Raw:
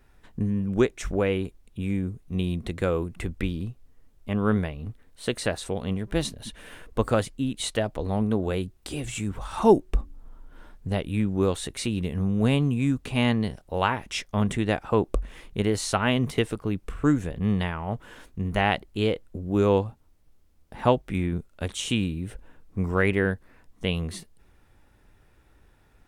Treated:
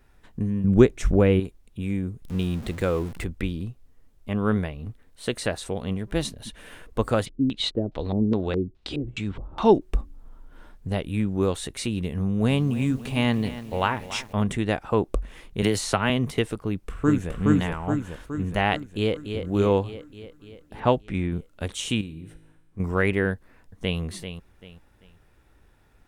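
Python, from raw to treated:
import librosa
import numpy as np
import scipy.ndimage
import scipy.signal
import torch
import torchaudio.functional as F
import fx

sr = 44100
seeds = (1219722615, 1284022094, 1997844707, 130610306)

y = fx.low_shelf(x, sr, hz=390.0, db=10.5, at=(0.64, 1.4))
y = fx.zero_step(y, sr, step_db=-36.5, at=(2.22, 3.24))
y = fx.filter_lfo_lowpass(y, sr, shape='square', hz=2.4, low_hz=350.0, high_hz=3900.0, q=2.1, at=(7.25, 9.8), fade=0.02)
y = fx.echo_crushed(y, sr, ms=284, feedback_pct=55, bits=7, wet_db=-14, at=(12.2, 14.33))
y = fx.band_squash(y, sr, depth_pct=100, at=(15.62, 16.1))
y = fx.echo_throw(y, sr, start_s=16.64, length_s=0.68, ms=420, feedback_pct=55, wet_db=-0.5)
y = fx.echo_throw(y, sr, start_s=18.84, length_s=0.57, ms=290, feedback_pct=65, wet_db=-7.0)
y = fx.env_lowpass(y, sr, base_hz=2700.0, full_db=-17.0, at=(20.79, 21.3), fade=0.02)
y = fx.comb_fb(y, sr, f0_hz=53.0, decay_s=1.2, harmonics='all', damping=0.0, mix_pct=70, at=(22.01, 22.8))
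y = fx.echo_throw(y, sr, start_s=23.33, length_s=0.67, ms=390, feedback_pct=30, wet_db=-9.5)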